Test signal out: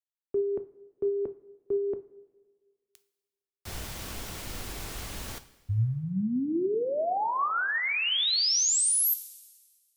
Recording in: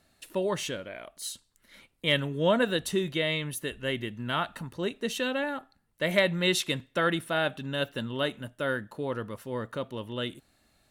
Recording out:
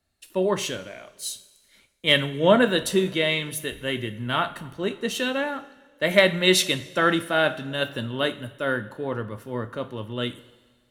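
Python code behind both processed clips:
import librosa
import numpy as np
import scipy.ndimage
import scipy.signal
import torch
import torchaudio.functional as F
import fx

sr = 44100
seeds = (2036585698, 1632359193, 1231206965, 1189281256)

y = fx.rev_double_slope(x, sr, seeds[0], early_s=0.41, late_s=2.5, knee_db=-14, drr_db=8.5)
y = fx.band_widen(y, sr, depth_pct=40)
y = y * 10.0 ** (4.5 / 20.0)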